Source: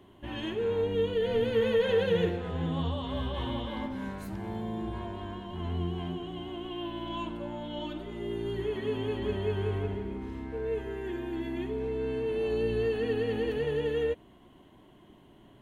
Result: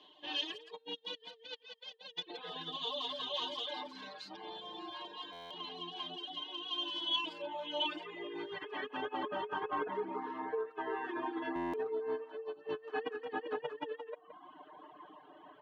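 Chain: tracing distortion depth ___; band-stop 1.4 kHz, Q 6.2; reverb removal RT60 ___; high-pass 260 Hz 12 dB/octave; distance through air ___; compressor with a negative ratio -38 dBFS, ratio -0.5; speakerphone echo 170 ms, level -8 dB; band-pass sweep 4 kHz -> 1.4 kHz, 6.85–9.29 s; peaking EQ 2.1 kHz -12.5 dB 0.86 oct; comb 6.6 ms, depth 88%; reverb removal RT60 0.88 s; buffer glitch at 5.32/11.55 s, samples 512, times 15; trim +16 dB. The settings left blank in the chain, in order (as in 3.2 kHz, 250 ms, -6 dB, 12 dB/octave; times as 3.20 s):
0.055 ms, 0.53 s, 210 m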